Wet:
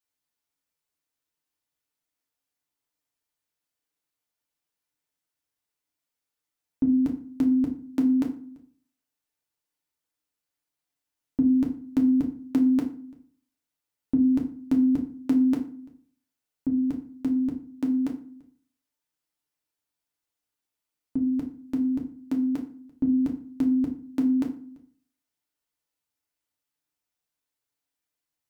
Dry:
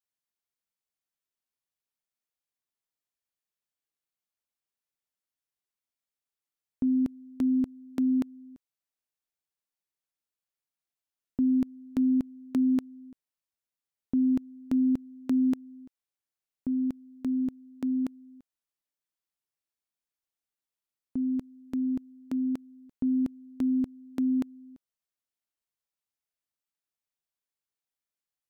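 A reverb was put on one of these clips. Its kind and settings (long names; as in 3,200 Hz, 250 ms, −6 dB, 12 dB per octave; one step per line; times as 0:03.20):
feedback delay network reverb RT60 0.45 s, low-frequency decay 1.2×, high-frequency decay 0.7×, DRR 0 dB
level +2.5 dB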